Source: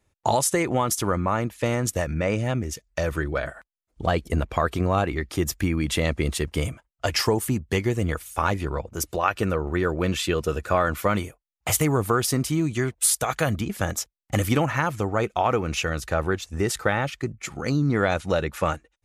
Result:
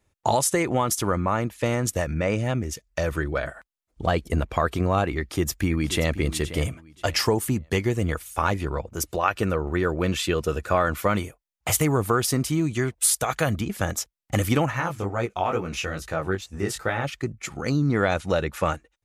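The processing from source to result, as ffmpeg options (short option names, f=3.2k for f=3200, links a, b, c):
-filter_complex "[0:a]asplit=2[a][b];[b]afade=t=in:st=5.16:d=0.01,afade=t=out:st=6.15:d=0.01,aecho=0:1:530|1060|1590:0.223872|0.055968|0.013992[c];[a][c]amix=inputs=2:normalize=0,asplit=3[d][e][f];[d]afade=t=out:st=14.7:d=0.02[g];[e]flanger=delay=16.5:depth=5.1:speed=2.3,afade=t=in:st=14.7:d=0.02,afade=t=out:st=17.03:d=0.02[h];[f]afade=t=in:st=17.03:d=0.02[i];[g][h][i]amix=inputs=3:normalize=0"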